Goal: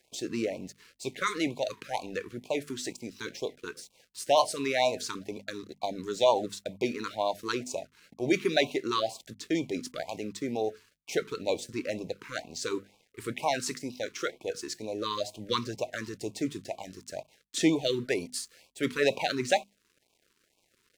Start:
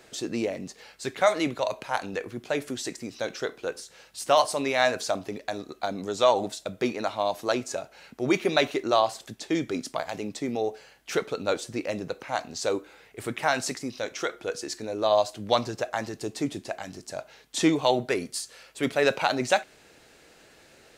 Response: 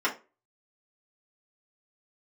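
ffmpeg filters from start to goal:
-af "aeval=exprs='sgn(val(0))*max(abs(val(0))-0.00266,0)':c=same,bandreject=f=50:t=h:w=6,bandreject=f=100:t=h:w=6,bandreject=f=150:t=h:w=6,bandreject=f=200:t=h:w=6,bandreject=f=250:t=h:w=6,afftfilt=real='re*(1-between(b*sr/1024,630*pow(1600/630,0.5+0.5*sin(2*PI*2.1*pts/sr))/1.41,630*pow(1600/630,0.5+0.5*sin(2*PI*2.1*pts/sr))*1.41))':imag='im*(1-between(b*sr/1024,630*pow(1600/630,0.5+0.5*sin(2*PI*2.1*pts/sr))/1.41,630*pow(1600/630,0.5+0.5*sin(2*PI*2.1*pts/sr))*1.41))':win_size=1024:overlap=0.75,volume=0.794"

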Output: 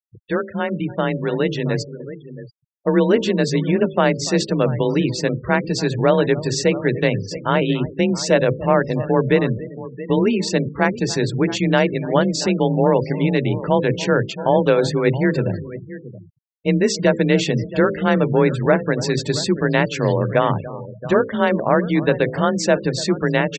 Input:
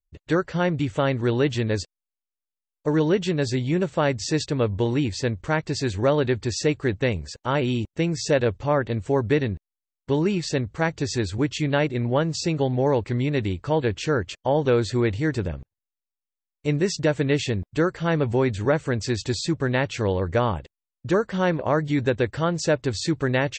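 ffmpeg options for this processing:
-filter_complex "[0:a]bandreject=f=60:t=h:w=6,bandreject=f=120:t=h:w=6,bandreject=f=180:t=h:w=6,bandreject=f=240:t=h:w=6,bandreject=f=300:t=h:w=6,bandreject=f=360:t=h:w=6,bandreject=f=420:t=h:w=6,bandreject=f=480:t=h:w=6,bandreject=f=540:t=h:w=6,asplit=2[s0][s1];[s1]adelay=288,lowpass=f=2500:p=1,volume=0.15,asplit=2[s2][s3];[s3]adelay=288,lowpass=f=2500:p=1,volume=0.18[s4];[s2][s4]amix=inputs=2:normalize=0[s5];[s0][s5]amix=inputs=2:normalize=0,afreqshift=29,asplit=2[s6][s7];[s7]aecho=0:1:674:0.168[s8];[s6][s8]amix=inputs=2:normalize=0,dynaudnorm=f=330:g=11:m=2.11,afftfilt=real='re*gte(hypot(re,im),0.0316)':imag='im*gte(hypot(re,im),0.0316)':win_size=1024:overlap=0.75,volume=1.12"

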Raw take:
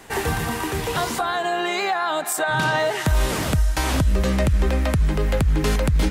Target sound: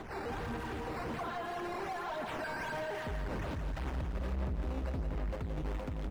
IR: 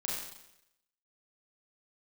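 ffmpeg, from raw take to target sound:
-filter_complex "[0:a]asettb=1/sr,asplit=3[s0][s1][s2];[s0]atrim=end=2.094[s3];[s1]atrim=start=2.09:end=2.77,asetpts=PTS-STARTPTS,afade=t=in:d=0.004:c=qsin,afade=t=out:st=0.676:d=0.004:c=qsin,aecho=1:1:4.5:0.85,atrim=end_sample=29988[s4];[s2]atrim=start=2.766[s5];[s3][s4]acrossfade=d=0.004:c1=hsin:c2=qsin[s6];[s6][s5]acrossfade=d=0.004:c1=qsin:c2=hsin,aphaser=in_gain=1:out_gain=1:delay=4.2:decay=0.66:speed=1.8:type=sinusoidal,acrusher=samples=8:mix=1:aa=0.000001:lfo=1:lforange=12.8:lforate=1.3,asoftclip=type=tanh:threshold=0.0562,alimiter=level_in=2.66:limit=0.0631:level=0:latency=1,volume=0.376,lowpass=f=1600:p=1,aecho=1:1:170|340|510|680|850|1020:0.447|0.237|0.125|0.0665|0.0352|0.0187,volume=0.708"

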